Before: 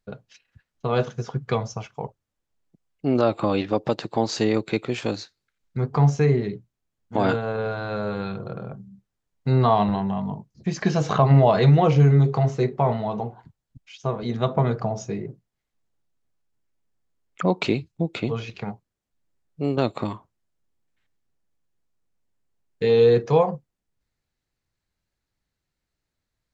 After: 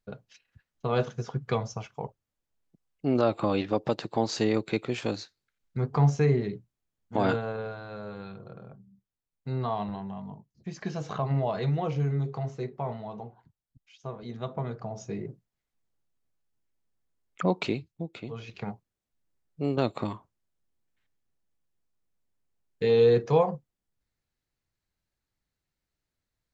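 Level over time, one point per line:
0:07.37 −4 dB
0:07.84 −12 dB
0:14.81 −12 dB
0:15.22 −4 dB
0:17.48 −4 dB
0:18.25 −13.5 dB
0:18.63 −4 dB

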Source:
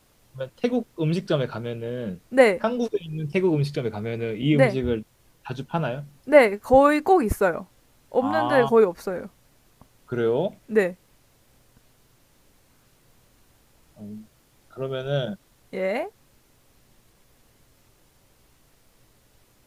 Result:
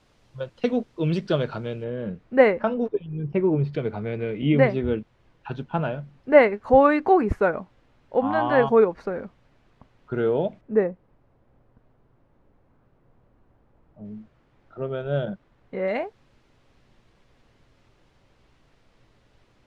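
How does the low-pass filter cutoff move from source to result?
4,900 Hz
from 0:01.84 2,300 Hz
from 0:02.74 1,400 Hz
from 0:03.73 2,700 Hz
from 0:10.61 1,100 Hz
from 0:14.05 2,000 Hz
from 0:15.88 3,600 Hz

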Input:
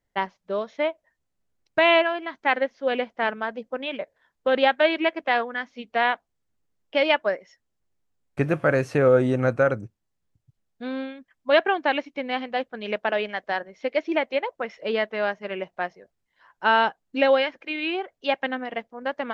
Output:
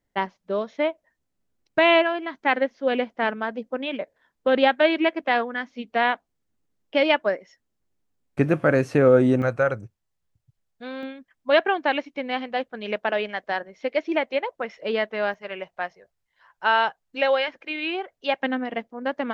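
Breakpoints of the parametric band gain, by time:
parametric band 260 Hz 1.2 octaves
+5 dB
from 0:09.42 −6.5 dB
from 0:11.03 +0.5 dB
from 0:15.34 −10 dB
from 0:17.48 −2 dB
from 0:18.40 +6 dB

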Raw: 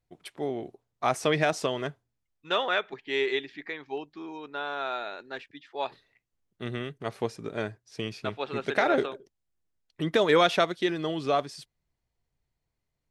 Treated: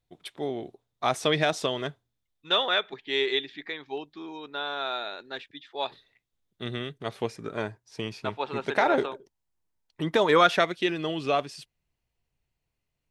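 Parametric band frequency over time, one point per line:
parametric band +9 dB 0.31 octaves
0:07.15 3,600 Hz
0:07.63 920 Hz
0:10.26 920 Hz
0:10.79 2,700 Hz

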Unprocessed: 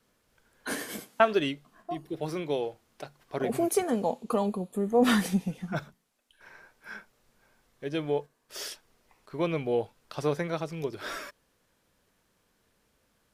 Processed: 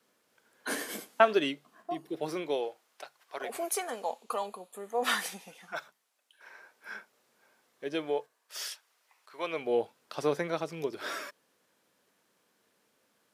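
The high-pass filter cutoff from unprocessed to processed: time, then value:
0:02.31 250 Hz
0:03.04 770 Hz
0:05.79 770 Hz
0:06.90 300 Hz
0:07.94 300 Hz
0:08.61 930 Hz
0:09.35 930 Hz
0:09.79 230 Hz

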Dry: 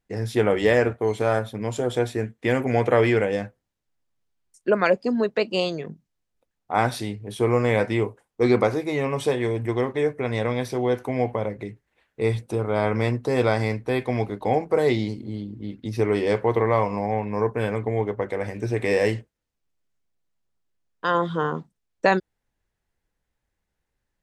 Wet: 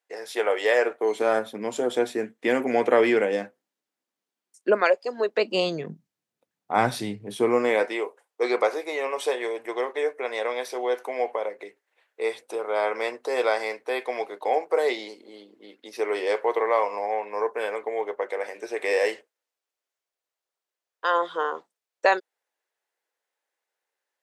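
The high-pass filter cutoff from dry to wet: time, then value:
high-pass filter 24 dB per octave
0:00.73 470 Hz
0:01.33 230 Hz
0:04.70 230 Hz
0:04.98 540 Hz
0:05.84 130 Hz
0:07.21 130 Hz
0:08.01 440 Hz

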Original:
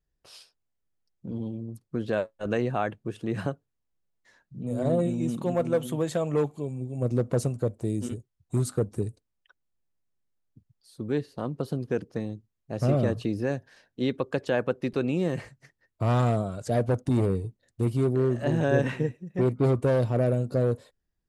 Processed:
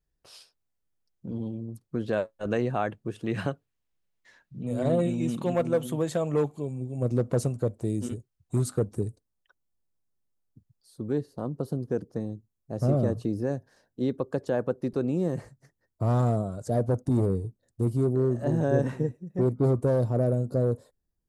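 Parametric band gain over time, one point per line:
parametric band 2,600 Hz 1.5 octaves
−2 dB
from 0:03.25 +5 dB
from 0:05.62 −2 dB
from 0:08.95 −8 dB
from 0:11.13 −14.5 dB

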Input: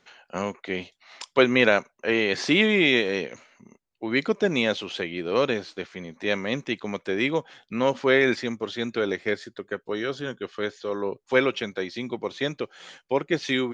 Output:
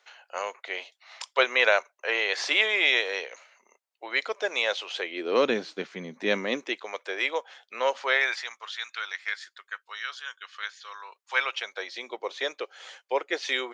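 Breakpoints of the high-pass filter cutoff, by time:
high-pass filter 24 dB per octave
0:04.91 550 Hz
0:05.60 160 Hz
0:06.29 160 Hz
0:06.88 520 Hz
0:07.86 520 Hz
0:08.80 1,100 Hz
0:11.04 1,100 Hz
0:12.04 470 Hz

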